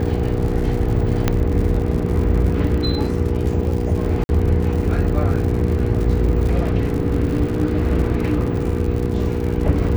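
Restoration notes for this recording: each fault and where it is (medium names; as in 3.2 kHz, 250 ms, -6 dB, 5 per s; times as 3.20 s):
crackle 110 per s -26 dBFS
hum 60 Hz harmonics 8 -23 dBFS
1.28 s: pop -3 dBFS
4.24–4.29 s: dropout 51 ms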